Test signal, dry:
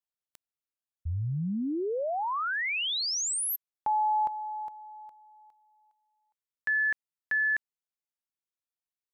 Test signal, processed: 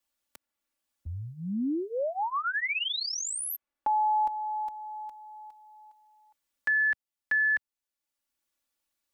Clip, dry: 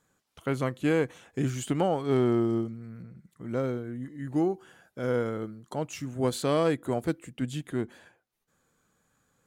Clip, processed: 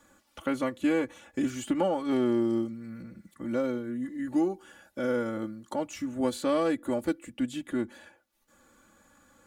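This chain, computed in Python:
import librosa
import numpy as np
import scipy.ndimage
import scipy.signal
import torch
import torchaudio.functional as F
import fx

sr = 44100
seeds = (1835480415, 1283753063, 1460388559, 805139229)

y = x + 0.89 * np.pad(x, (int(3.5 * sr / 1000.0), 0))[:len(x)]
y = fx.band_squash(y, sr, depth_pct=40)
y = y * librosa.db_to_amplitude(-3.0)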